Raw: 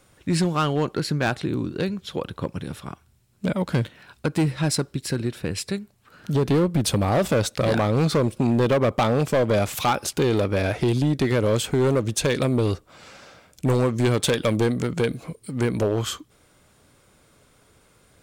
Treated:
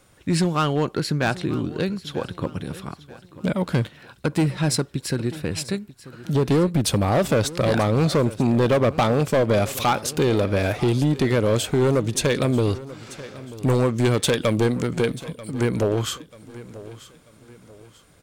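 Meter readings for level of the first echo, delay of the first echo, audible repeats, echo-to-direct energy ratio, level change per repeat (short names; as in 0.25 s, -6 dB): -17.5 dB, 0.938 s, 3, -17.0 dB, -8.0 dB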